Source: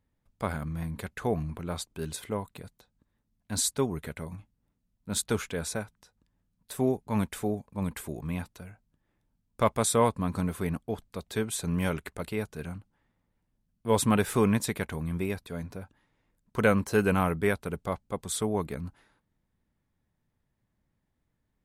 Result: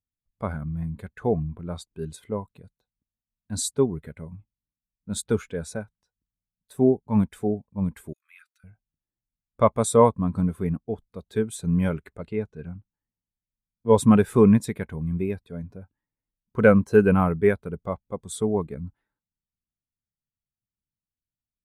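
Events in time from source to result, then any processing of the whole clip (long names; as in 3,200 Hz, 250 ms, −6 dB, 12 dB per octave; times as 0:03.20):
0:08.13–0:08.64: Chebyshev high-pass filter 1,300 Hz, order 5
0:12.18–0:13.98: Bessel low-pass filter 6,300 Hz
whole clip: every bin expanded away from the loudest bin 1.5 to 1; level +6.5 dB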